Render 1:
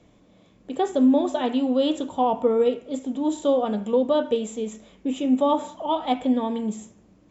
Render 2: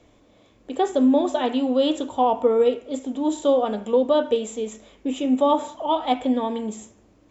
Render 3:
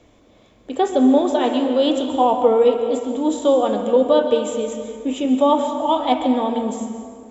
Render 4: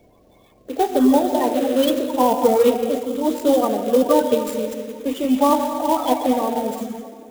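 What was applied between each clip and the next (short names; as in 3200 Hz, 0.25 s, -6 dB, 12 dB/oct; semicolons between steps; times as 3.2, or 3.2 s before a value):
bell 170 Hz -15 dB 0.5 oct; gain +2.5 dB
plate-style reverb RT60 2 s, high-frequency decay 0.6×, pre-delay 0.11 s, DRR 6.5 dB; gain +3 dB
bin magnitudes rounded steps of 30 dB; clock jitter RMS 0.029 ms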